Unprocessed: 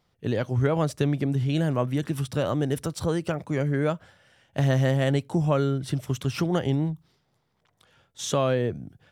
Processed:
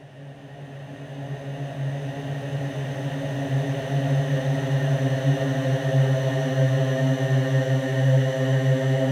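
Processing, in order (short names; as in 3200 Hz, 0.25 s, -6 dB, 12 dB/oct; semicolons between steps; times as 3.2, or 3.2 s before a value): Paulstretch 21×, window 0.50 s, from 4.41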